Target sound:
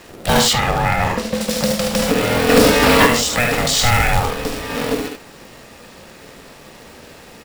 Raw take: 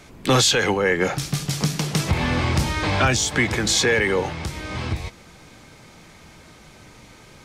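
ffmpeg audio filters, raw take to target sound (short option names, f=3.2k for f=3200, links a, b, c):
-filter_complex "[0:a]aeval=exprs='val(0)*sin(2*PI*360*n/s)':c=same,aecho=1:1:47|74:0.316|0.501,asplit=2[a][b];[b]alimiter=limit=-16dB:level=0:latency=1,volume=2dB[c];[a][c]amix=inputs=2:normalize=0,asplit=3[d][e][f];[d]afade=t=out:st=2.48:d=0.02[g];[e]acontrast=76,afade=t=in:st=2.48:d=0.02,afade=t=out:st=3.05:d=0.02[h];[f]afade=t=in:st=3.05:d=0.02[i];[g][h][i]amix=inputs=3:normalize=0,acrusher=bits=2:mode=log:mix=0:aa=0.000001,asettb=1/sr,asplit=3[j][k][l];[j]atrim=end=0.534[m];[k]atrim=start=0.53:end=1.41,asetpts=PTS-STARTPTS,afade=t=in:d=0.004:c=qsin,afade=t=out:st=0.876:d=0.004:c=qsin,highshelf=f=4.6k:g=-10.5[n];[l]atrim=start=1.406[o];[m][n]acrossfade=d=0.004:c1=hsin:c2=qsin[p];[p][o]acrossfade=d=0.004:c1=qsin:c2=hsin,bandreject=f=6.3k:w=17,asplit=3[q][r][s];[q]afade=t=out:st=3.75:d=0.02[t];[r]asubboost=boost=2:cutoff=120,afade=t=in:st=3.75:d=0.02,afade=t=out:st=4.61:d=0.02[u];[s]afade=t=in:st=4.61:d=0.02[v];[t][u][v]amix=inputs=3:normalize=0"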